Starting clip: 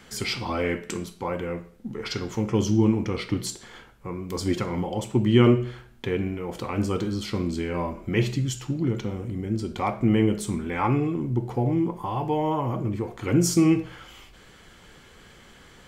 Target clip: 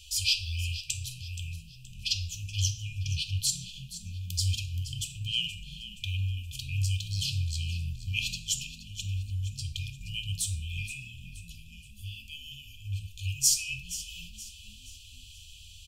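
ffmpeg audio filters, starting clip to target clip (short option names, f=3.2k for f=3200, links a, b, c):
-filter_complex "[0:a]afftfilt=real='re*(1-between(b*sr/4096,100,2400))':imag='im*(1-between(b*sr/4096,100,2400))':win_size=4096:overlap=0.75,asplit=2[a][b];[b]asplit=4[c][d][e][f];[c]adelay=474,afreqshift=38,volume=-14dB[g];[d]adelay=948,afreqshift=76,volume=-21.7dB[h];[e]adelay=1422,afreqshift=114,volume=-29.5dB[i];[f]adelay=1896,afreqshift=152,volume=-37.2dB[j];[g][h][i][j]amix=inputs=4:normalize=0[k];[a][k]amix=inputs=2:normalize=0,volume=5dB"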